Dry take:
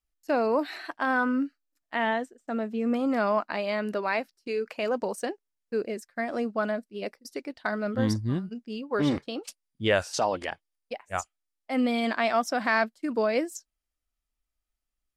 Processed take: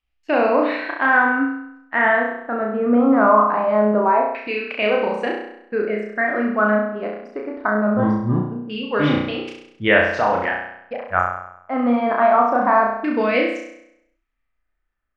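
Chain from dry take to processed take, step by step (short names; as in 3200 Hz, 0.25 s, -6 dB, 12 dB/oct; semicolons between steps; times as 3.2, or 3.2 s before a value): flutter echo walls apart 5.7 m, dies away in 0.77 s; LFO low-pass saw down 0.23 Hz 900–2900 Hz; gain +4.5 dB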